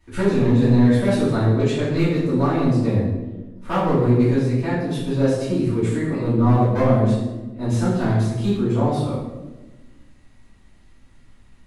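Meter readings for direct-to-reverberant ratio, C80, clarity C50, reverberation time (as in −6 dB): −12.5 dB, 4.0 dB, 1.0 dB, 1.2 s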